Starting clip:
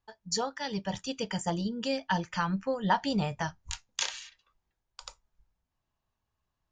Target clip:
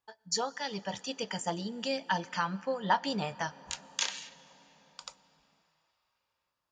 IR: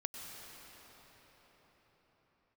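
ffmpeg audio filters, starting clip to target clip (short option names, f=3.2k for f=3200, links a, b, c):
-filter_complex "[0:a]highpass=f=350:p=1,asplit=2[a][b];[1:a]atrim=start_sample=2205[c];[b][c]afir=irnorm=-1:irlink=0,volume=-15.5dB[d];[a][d]amix=inputs=2:normalize=0,volume=-1dB"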